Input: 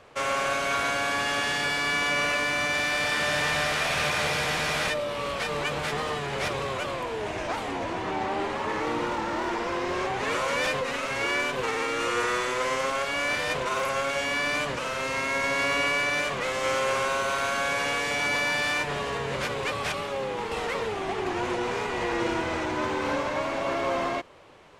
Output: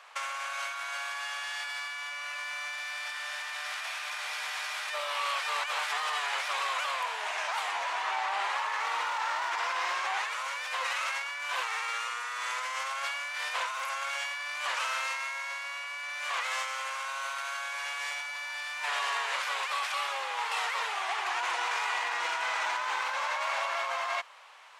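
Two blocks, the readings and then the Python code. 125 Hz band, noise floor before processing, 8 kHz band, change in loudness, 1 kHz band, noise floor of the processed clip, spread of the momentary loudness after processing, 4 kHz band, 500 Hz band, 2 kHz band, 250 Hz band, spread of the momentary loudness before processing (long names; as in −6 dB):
below −40 dB, −32 dBFS, −4.5 dB, −5.0 dB, −3.0 dB, −38 dBFS, 5 LU, −4.0 dB, −15.5 dB, −4.5 dB, below −30 dB, 6 LU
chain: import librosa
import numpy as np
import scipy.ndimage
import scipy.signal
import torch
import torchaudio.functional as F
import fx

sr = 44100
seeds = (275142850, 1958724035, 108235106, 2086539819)

y = scipy.signal.sosfilt(scipy.signal.butter(4, 860.0, 'highpass', fs=sr, output='sos'), x)
y = fx.over_compress(y, sr, threshold_db=-34.0, ratio=-1.0)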